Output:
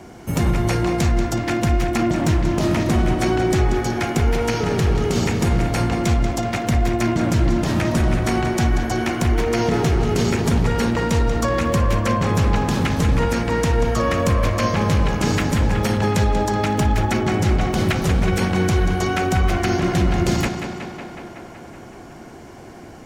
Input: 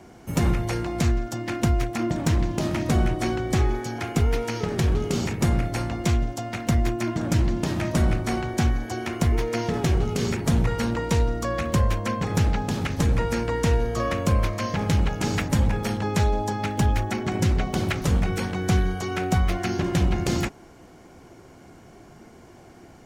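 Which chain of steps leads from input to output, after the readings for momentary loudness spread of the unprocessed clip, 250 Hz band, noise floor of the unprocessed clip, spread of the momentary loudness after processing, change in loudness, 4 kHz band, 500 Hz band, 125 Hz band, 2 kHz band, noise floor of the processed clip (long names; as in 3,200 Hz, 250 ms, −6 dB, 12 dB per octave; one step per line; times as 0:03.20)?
4 LU, +5.5 dB, −48 dBFS, 3 LU, +5.0 dB, +5.5 dB, +6.5 dB, +4.0 dB, +6.5 dB, −39 dBFS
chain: brickwall limiter −17.5 dBFS, peak gain reduction 7 dB
tape delay 186 ms, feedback 81%, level −6 dB, low-pass 5,100 Hz
level +7 dB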